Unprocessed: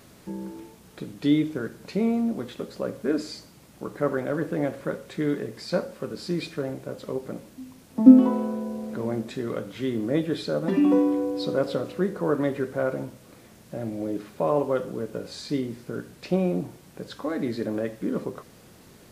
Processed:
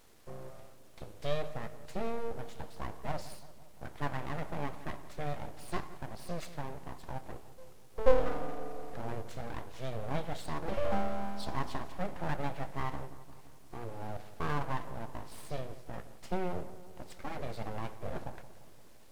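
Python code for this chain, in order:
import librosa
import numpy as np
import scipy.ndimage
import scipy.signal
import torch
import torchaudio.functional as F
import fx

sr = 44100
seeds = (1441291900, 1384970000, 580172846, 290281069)

y = np.abs(x)
y = fx.echo_filtered(y, sr, ms=172, feedback_pct=65, hz=2000.0, wet_db=-15)
y = y * 10.0 ** (-8.0 / 20.0)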